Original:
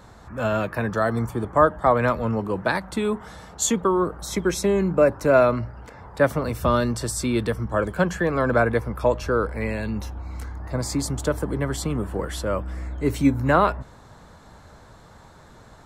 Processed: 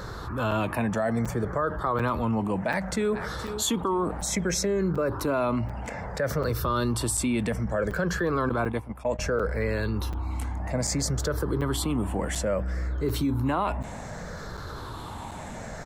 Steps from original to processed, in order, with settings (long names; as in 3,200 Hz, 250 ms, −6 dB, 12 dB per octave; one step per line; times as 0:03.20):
rippled gain that drifts along the octave scale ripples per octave 0.58, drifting −0.62 Hz, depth 9 dB
brickwall limiter −14.5 dBFS, peak gain reduction 11 dB
0:02.53–0:03.28: delay throw 470 ms, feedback 40%, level −17 dB
0:08.49–0:09.19: noise gate −23 dBFS, range −25 dB
regular buffer underruns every 0.74 s, samples 256, zero, from 0:00.51
envelope flattener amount 50%
level −4.5 dB